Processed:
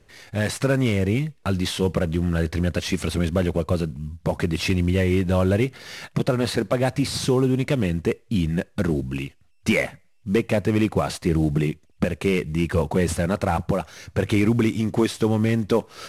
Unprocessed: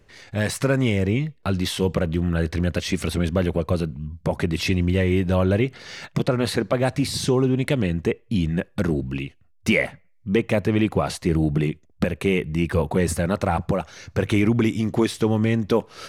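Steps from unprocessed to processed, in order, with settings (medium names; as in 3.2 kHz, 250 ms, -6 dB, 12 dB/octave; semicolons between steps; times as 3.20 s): CVSD coder 64 kbps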